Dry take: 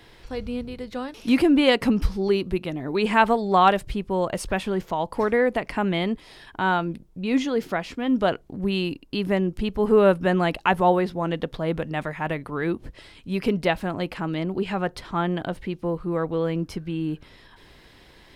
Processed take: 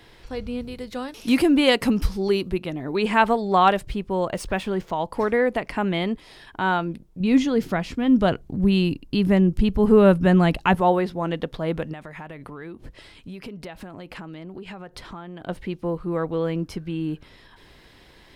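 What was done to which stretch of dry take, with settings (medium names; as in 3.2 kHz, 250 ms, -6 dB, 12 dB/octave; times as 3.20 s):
0.61–2.49 s: treble shelf 5.4 kHz +8 dB
3.86–4.93 s: median filter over 3 samples
7.20–10.75 s: tone controls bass +10 dB, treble +2 dB
11.93–15.49 s: compression 10:1, threshold -33 dBFS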